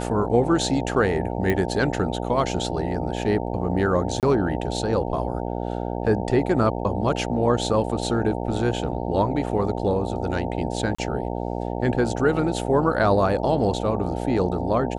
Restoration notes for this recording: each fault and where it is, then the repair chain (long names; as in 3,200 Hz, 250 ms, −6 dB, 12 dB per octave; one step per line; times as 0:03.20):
mains buzz 60 Hz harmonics 15 −28 dBFS
0:01.50: click −11 dBFS
0:04.20–0:04.23: drop-out 28 ms
0:10.95–0:10.98: drop-out 35 ms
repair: click removal
hum removal 60 Hz, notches 15
repair the gap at 0:04.20, 28 ms
repair the gap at 0:10.95, 35 ms